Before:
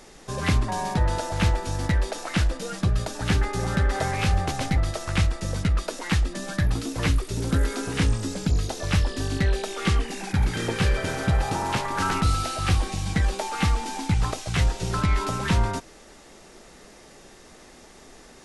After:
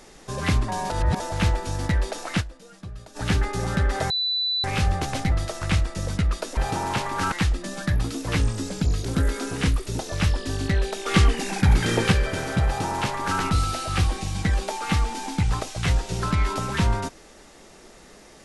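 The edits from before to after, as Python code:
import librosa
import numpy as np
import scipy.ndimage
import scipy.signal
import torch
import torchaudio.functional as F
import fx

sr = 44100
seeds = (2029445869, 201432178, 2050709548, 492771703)

y = fx.edit(x, sr, fx.reverse_span(start_s=0.9, length_s=0.3),
    fx.fade_down_up(start_s=2.4, length_s=0.77, db=-15.0, fade_s=0.12, curve='exp'),
    fx.insert_tone(at_s=4.1, length_s=0.54, hz=3980.0, db=-21.5),
    fx.swap(start_s=7.1, length_s=0.31, other_s=8.04, other_length_s=0.66),
    fx.clip_gain(start_s=9.77, length_s=1.06, db=5.0),
    fx.duplicate(start_s=11.36, length_s=0.75, to_s=6.03), tone=tone)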